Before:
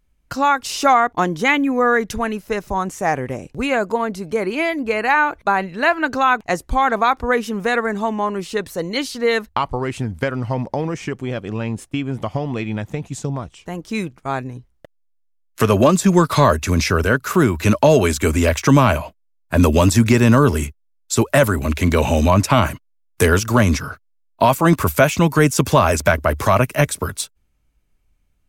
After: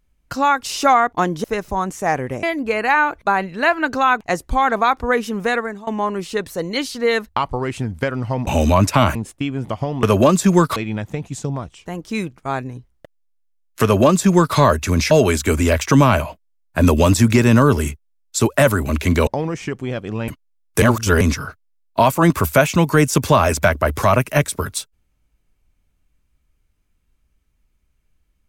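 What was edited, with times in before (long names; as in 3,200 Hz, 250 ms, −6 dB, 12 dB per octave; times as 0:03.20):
0:01.44–0:02.43: remove
0:03.42–0:04.63: remove
0:07.70–0:08.07: fade out, to −21.5 dB
0:10.67–0:11.68: swap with 0:22.03–0:22.71
0:15.63–0:16.36: duplicate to 0:12.56
0:16.91–0:17.87: remove
0:23.25–0:23.64: reverse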